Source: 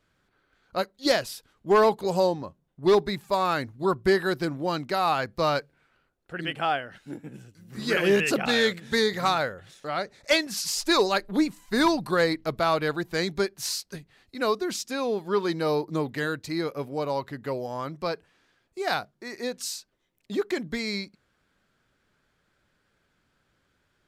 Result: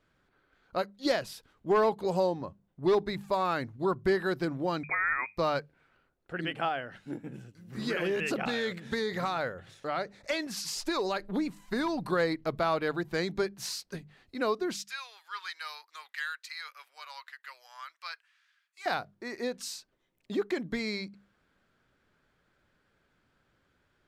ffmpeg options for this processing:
-filter_complex "[0:a]asettb=1/sr,asplit=3[a][b][c];[a]atrim=end=4.834[d];[b]atrim=start=4.83:end=5.37,asetpts=PTS-STARTPTS,afade=t=in:d=0.004:c=qsin,afade=t=out:st=0.536:d=0.004:c=qsin,lowpass=f=2.2k:t=q:w=0.5098,lowpass=f=2.2k:t=q:w=0.6013,lowpass=f=2.2k:t=q:w=0.9,lowpass=f=2.2k:t=q:w=2.563,afreqshift=-2600[e];[c]atrim=start=5.366[f];[d][e]acrossfade=d=0.004:c1=hsin:c2=qsin[g];[g][f]acrossfade=d=0.004:c1=qsin:c2=hsin,asettb=1/sr,asplit=3[h][i][j];[h]atrim=end=6.684[k];[i]atrim=start=6.68:end=12.05,asetpts=PTS-STARTPTS,afade=t=in:d=0.004:c=qsin,afade=t=out:st=5.366:d=0.004:c=qsin,acompressor=threshold=-23dB:ratio=6:attack=3.2:release=140:knee=1:detection=peak[l];[j]atrim=start=12.046[m];[k][l]acrossfade=d=0.004:c1=hsin:c2=qsin[n];[n][m]acrossfade=d=0.004:c1=qsin:c2=hsin,asettb=1/sr,asplit=3[o][p][q];[o]atrim=end=14.754[r];[p]atrim=start=14.75:end=18.86,asetpts=PTS-STARTPTS,afade=t=in:d=0.004:c=qsin,afade=t=out:st=4.106:d=0.004:c=qsin,highpass=f=1.4k:w=0.5412,highpass=f=1.4k:w=1.3066[s];[q]atrim=start=18.856[t];[r][s]acrossfade=d=0.004:c1=hsin:c2=qsin[u];[u][t]acrossfade=d=0.004:c1=qsin:c2=hsin,bandreject=f=50:t=h:w=6,bandreject=f=100:t=h:w=6,bandreject=f=150:t=h:w=6,bandreject=f=200:t=h:w=6,acompressor=threshold=-31dB:ratio=1.5,highshelf=f=4.3k:g=-8"

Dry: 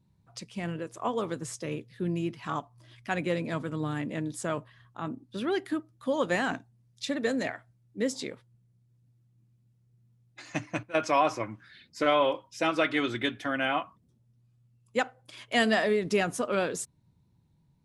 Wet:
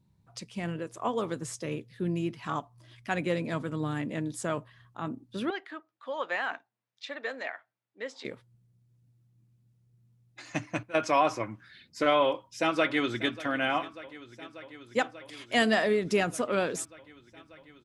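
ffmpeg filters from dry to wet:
-filter_complex "[0:a]asettb=1/sr,asplit=3[a][b][c];[a]atrim=end=5.504[d];[b]atrim=start=5.5:end=8.25,asetpts=PTS-STARTPTS,afade=t=in:d=0.004:c=qsin,afade=t=out:st=2.746:d=0.004:c=qsin,highpass=750,lowpass=3k[e];[c]atrim=start=8.246[f];[d][e]acrossfade=d=0.004:c1=hsin:c2=qsin[g];[g][f]acrossfade=d=0.004:c1=qsin:c2=hsin,asplit=2[h][i];[i]afade=t=in:st=12.26:d=0.01,afade=t=out:st=13.39:d=0.01,aecho=0:1:590|1180|1770|2360|2950|3540|4130|4720|5310|5900|6490|7080:0.133352|0.113349|0.0963469|0.0818949|0.0696107|0.0591691|0.0502937|0.0427496|0.0363372|0.0308866|0.0262536|0.0223156[j];[h][j]amix=inputs=2:normalize=0"

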